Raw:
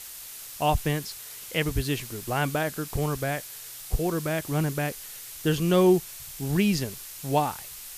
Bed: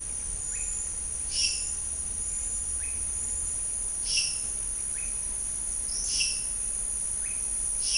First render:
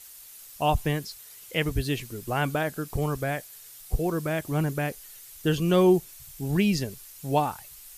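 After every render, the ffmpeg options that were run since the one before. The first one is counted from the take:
-af "afftdn=nr=9:nf=-42"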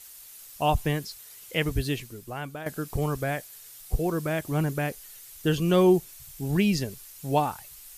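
-filter_complex "[0:a]asplit=2[a][b];[a]atrim=end=2.66,asetpts=PTS-STARTPTS,afade=t=out:st=1.87:d=0.79:c=qua:silence=0.281838[c];[b]atrim=start=2.66,asetpts=PTS-STARTPTS,afade=t=in:d=0.004:c=hsin:silence=0.281838[d];[c][d]concat=n=2:v=0:a=1"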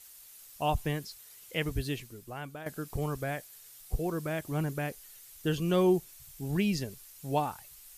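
-af "volume=-5.5dB"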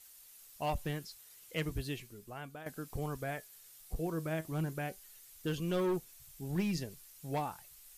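-af "volume=23.5dB,asoftclip=hard,volume=-23.5dB,flanger=delay=3.8:depth=2.5:regen=78:speed=0.35:shape=sinusoidal"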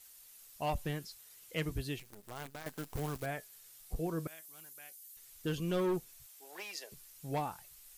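-filter_complex "[0:a]asettb=1/sr,asplit=3[a][b][c];[a]atrim=end=1.994[d];[b]atrim=start=1.99:end=3.26,asetpts=PTS-STARTPTS,afade=t=in:d=0.004:c=qsin,afade=t=out:st=1.266:d=0.004:c=qsin,acrusher=bits=8:dc=4:mix=0:aa=0.000001[e];[c]atrim=start=3.256[f];[d][e]acrossfade=d=0.004:c1=hsin:c2=qsin[g];[g][f]acrossfade=d=0.004:c1=qsin:c2=hsin,asettb=1/sr,asplit=3[h][i][j];[h]atrim=end=4.274[k];[i]atrim=start=4.27:end=5.17,asetpts=PTS-STARTPTS,afade=t=in:d=0.004:c=qsin,afade=t=out:st=0.896:d=0.004:c=qsin,aderivative[l];[j]atrim=start=5.166[m];[k][l]acrossfade=d=0.004:c1=hsin:c2=qsin[n];[n][m]acrossfade=d=0.004:c1=qsin:c2=hsin,asettb=1/sr,asplit=3[o][p][q];[o]atrim=end=6.264[r];[p]atrim=start=6.26:end=6.92,asetpts=PTS-STARTPTS,afade=t=in:d=0.004:c=qsin,afade=t=out:st=0.656:d=0.004:c=qsin,highpass=f=540:w=0.5412,highpass=f=540:w=1.3066[s];[q]atrim=start=6.916[t];[r][s]acrossfade=d=0.004:c1=hsin:c2=qsin[u];[u][t]acrossfade=d=0.004:c1=qsin:c2=hsin"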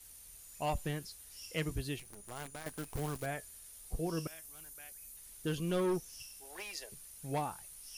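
-filter_complex "[1:a]volume=-24dB[a];[0:a][a]amix=inputs=2:normalize=0"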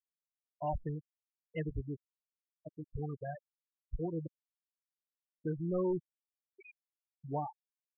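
-af "afftfilt=real='re*gte(hypot(re,im),0.0501)':imag='im*gte(hypot(re,im),0.0501)':win_size=1024:overlap=0.75,lowpass=2.4k"

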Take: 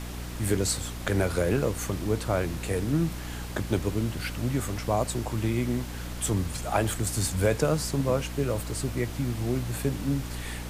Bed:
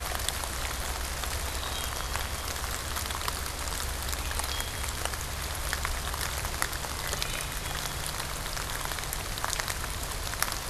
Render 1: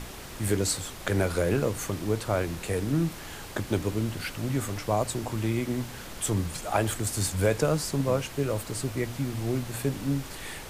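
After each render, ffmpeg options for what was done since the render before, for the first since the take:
-af "bandreject=f=60:t=h:w=4,bandreject=f=120:t=h:w=4,bandreject=f=180:t=h:w=4,bandreject=f=240:t=h:w=4,bandreject=f=300:t=h:w=4"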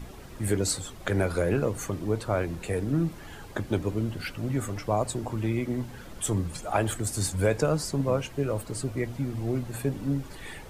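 -af "afftdn=nr=10:nf=-41"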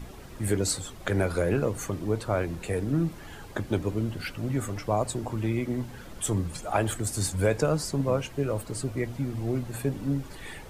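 -af anull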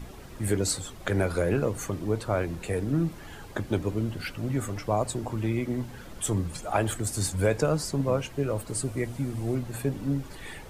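-filter_complex "[0:a]asettb=1/sr,asplit=3[a][b][c];[a]atrim=end=8.684[d];[b]atrim=start=8.68:end=9.55,asetpts=PTS-STARTPTS,afade=t=in:d=0.004:c=qsin,afade=t=out:st=0.866:d=0.004:c=qsin,equalizer=f=9.2k:t=o:w=0.74:g=7[e];[c]atrim=start=9.546[f];[d][e]acrossfade=d=0.004:c1=hsin:c2=qsin[g];[g][f]acrossfade=d=0.004:c1=qsin:c2=hsin"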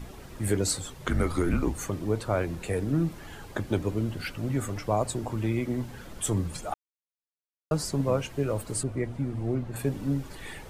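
-filter_complex "[0:a]asettb=1/sr,asplit=3[a][b][c];[a]atrim=end=0.944[d];[b]atrim=start=0.94:end=1.79,asetpts=PTS-STARTPTS,afade=t=in:d=0.004:c=qsin,afade=t=out:st=0.846:d=0.004:c=qsin,afreqshift=-170[e];[c]atrim=start=1.786[f];[d][e]acrossfade=d=0.004:c1=hsin:c2=qsin[g];[g][f]acrossfade=d=0.004:c1=qsin:c2=hsin,asettb=1/sr,asplit=3[h][i][j];[h]atrim=end=8.834[k];[i]atrim=start=8.83:end=9.76,asetpts=PTS-STARTPTS,afade=t=in:d=0.004:c=qsin,afade=t=out:st=0.926:d=0.004:c=qsin,lowpass=f=1.8k:p=1[l];[j]atrim=start=9.756[m];[k][l]acrossfade=d=0.004:c1=hsin:c2=qsin[n];[n][m]acrossfade=d=0.004:c1=qsin:c2=hsin,asplit=3[o][p][q];[o]atrim=end=6.74,asetpts=PTS-STARTPTS,afade=t=out:st=6.736:d=0.004:c=hsin[r];[p]atrim=start=6.74:end=7.71,asetpts=PTS-STARTPTS,volume=0[s];[q]atrim=start=7.71,asetpts=PTS-STARTPTS,afade=t=in:d=0.004:c=hsin[t];[r][s][t]concat=n=3:v=0:a=1"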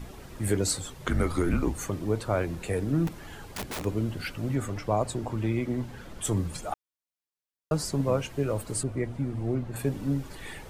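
-filter_complex "[0:a]asettb=1/sr,asplit=3[a][b][c];[a]atrim=end=3.074[d];[b]atrim=start=3.07:end=3.85,asetpts=PTS-STARTPTS,afade=t=in:d=0.004:c=qsin,afade=t=out:st=0.776:d=0.004:c=qsin,aeval=exprs='(mod(28.2*val(0)+1,2)-1)/28.2':c=same[e];[c]atrim=start=3.846[f];[d][e]acrossfade=d=0.004:c1=hsin:c2=qsin[g];[g][f]acrossfade=d=0.004:c1=qsin:c2=hsin,asettb=1/sr,asplit=3[h][i][j];[h]atrim=end=4.554[k];[i]atrim=start=4.55:end=6.25,asetpts=PTS-STARTPTS,afade=t=in:d=0.004:c=qsin,afade=t=out:st=1.696:d=0.004:c=qsin,highshelf=f=7.2k:g=-6.5[l];[j]atrim=start=6.246[m];[k][l]acrossfade=d=0.004:c1=hsin:c2=qsin[n];[n][m]acrossfade=d=0.004:c1=qsin:c2=hsin"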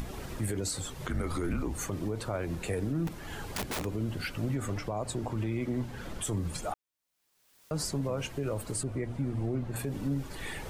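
-af "acompressor=mode=upward:threshold=-32dB:ratio=2.5,alimiter=limit=-23.5dB:level=0:latency=1:release=77"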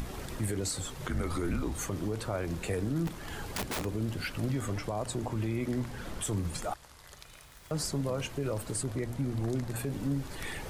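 -filter_complex "[1:a]volume=-20dB[a];[0:a][a]amix=inputs=2:normalize=0"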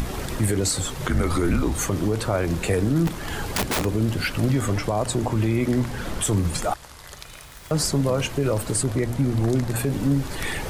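-af "volume=10.5dB"

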